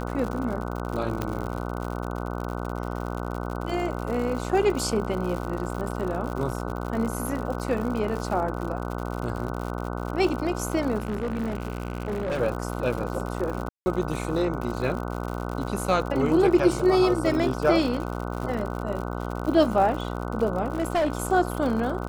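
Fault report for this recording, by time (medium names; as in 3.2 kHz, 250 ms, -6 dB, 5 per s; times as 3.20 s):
buzz 60 Hz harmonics 25 -31 dBFS
crackle 100 per s -31 dBFS
1.22 s: pop -13 dBFS
10.98–12.40 s: clipped -24 dBFS
13.69–13.86 s: dropout 170 ms
20.73–21.13 s: clipped -19.5 dBFS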